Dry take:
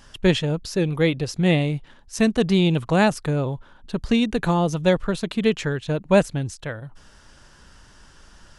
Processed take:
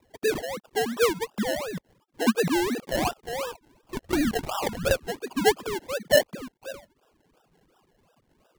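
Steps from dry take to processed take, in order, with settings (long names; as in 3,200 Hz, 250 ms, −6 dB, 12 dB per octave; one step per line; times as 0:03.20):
three sine waves on the formant tracks
Butterworth band-reject 2,000 Hz, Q 2.8
0:02.87–0:05.06: linear-prediction vocoder at 8 kHz whisper
sample-and-hold swept by an LFO 29×, swing 60% 2.8 Hz
level −5.5 dB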